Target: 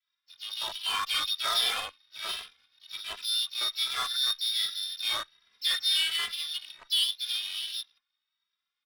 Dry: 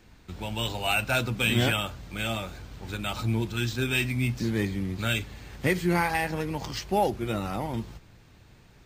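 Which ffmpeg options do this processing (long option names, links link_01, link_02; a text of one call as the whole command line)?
ffmpeg -i in.wav -filter_complex "[0:a]acrossover=split=2000[link_01][link_02];[link_02]adelay=40[link_03];[link_01][link_03]amix=inputs=2:normalize=0,lowpass=frequency=3200:width_type=q:width=0.5098,lowpass=frequency=3200:width_type=q:width=0.6013,lowpass=frequency=3200:width_type=q:width=0.9,lowpass=frequency=3200:width_type=q:width=2.563,afreqshift=-3800,acrossover=split=1300[link_04][link_05];[link_04]acrusher=bits=5:mix=0:aa=0.000001[link_06];[link_06][link_05]amix=inputs=2:normalize=0,equalizer=frequency=180:width_type=o:width=1.8:gain=-12.5,adynamicsmooth=sensitivity=6.5:basefreq=610,asplit=4[link_07][link_08][link_09][link_10];[link_08]asetrate=52444,aresample=44100,atempo=0.840896,volume=-12dB[link_11];[link_09]asetrate=58866,aresample=44100,atempo=0.749154,volume=-14dB[link_12];[link_10]asetrate=66075,aresample=44100,atempo=0.66742,volume=-12dB[link_13];[link_07][link_11][link_12][link_13]amix=inputs=4:normalize=0,asplit=2[link_14][link_15];[link_15]adelay=2.6,afreqshift=1.3[link_16];[link_14][link_16]amix=inputs=2:normalize=1" out.wav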